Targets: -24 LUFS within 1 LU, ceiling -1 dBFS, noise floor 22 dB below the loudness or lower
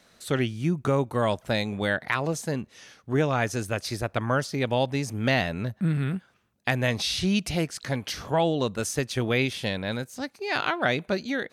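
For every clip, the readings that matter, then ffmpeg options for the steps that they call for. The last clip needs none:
loudness -27.0 LUFS; peak -9.5 dBFS; loudness target -24.0 LUFS
-> -af "volume=3dB"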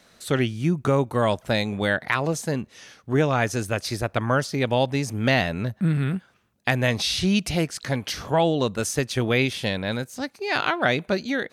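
loudness -24.0 LUFS; peak -6.5 dBFS; noise floor -60 dBFS

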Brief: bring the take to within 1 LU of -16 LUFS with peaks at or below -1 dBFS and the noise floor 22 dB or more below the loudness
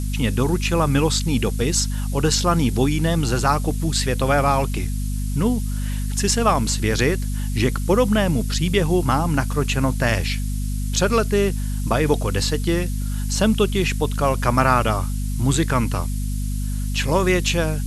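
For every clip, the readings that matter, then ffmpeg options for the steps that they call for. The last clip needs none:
hum 50 Hz; harmonics up to 250 Hz; hum level -21 dBFS; noise floor -24 dBFS; noise floor target -43 dBFS; loudness -21.0 LUFS; peak -2.0 dBFS; loudness target -16.0 LUFS
-> -af "bandreject=f=50:t=h:w=4,bandreject=f=100:t=h:w=4,bandreject=f=150:t=h:w=4,bandreject=f=200:t=h:w=4,bandreject=f=250:t=h:w=4"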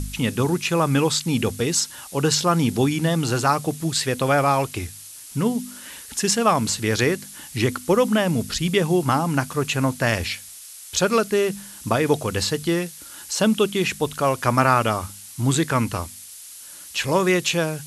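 hum none; noise floor -41 dBFS; noise floor target -44 dBFS
-> -af "afftdn=nr=6:nf=-41"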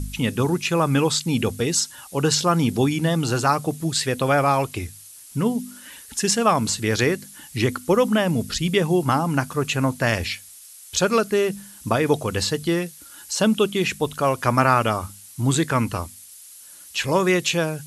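noise floor -44 dBFS; loudness -21.5 LUFS; peak -2.0 dBFS; loudness target -16.0 LUFS
-> -af "volume=5.5dB,alimiter=limit=-1dB:level=0:latency=1"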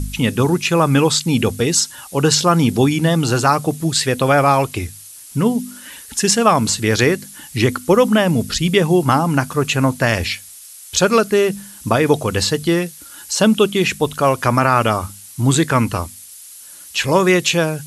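loudness -16.5 LUFS; peak -1.0 dBFS; noise floor -39 dBFS

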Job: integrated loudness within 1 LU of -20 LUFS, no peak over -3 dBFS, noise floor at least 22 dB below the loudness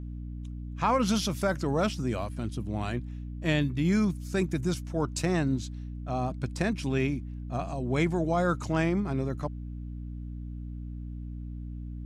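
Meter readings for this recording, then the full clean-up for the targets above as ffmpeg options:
hum 60 Hz; harmonics up to 300 Hz; hum level -35 dBFS; loudness -30.5 LUFS; peak -14.0 dBFS; loudness target -20.0 LUFS
-> -af "bandreject=f=60:t=h:w=4,bandreject=f=120:t=h:w=4,bandreject=f=180:t=h:w=4,bandreject=f=240:t=h:w=4,bandreject=f=300:t=h:w=4"
-af "volume=10.5dB"

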